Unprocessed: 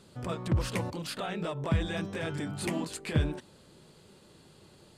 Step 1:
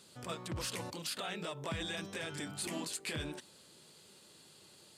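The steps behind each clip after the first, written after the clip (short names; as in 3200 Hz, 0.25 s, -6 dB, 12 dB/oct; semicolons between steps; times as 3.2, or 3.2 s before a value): HPF 180 Hz 6 dB/oct; high shelf 2300 Hz +12 dB; limiter -21.5 dBFS, peak gain reduction 9.5 dB; gain -6.5 dB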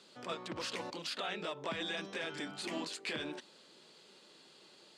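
three-band isolator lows -24 dB, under 190 Hz, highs -20 dB, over 6100 Hz; gain +2 dB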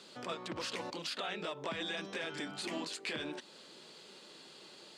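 compressor 1.5:1, threshold -51 dBFS, peak gain reduction 6.5 dB; gain +5.5 dB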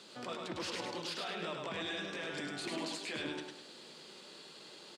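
limiter -31 dBFS, peak gain reduction 7 dB; flange 1.6 Hz, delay 8.4 ms, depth 5.6 ms, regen +84%; feedback echo 0.103 s, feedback 38%, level -4 dB; gain +4.5 dB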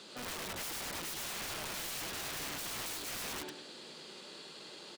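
wrapped overs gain 38.5 dB; gain +3 dB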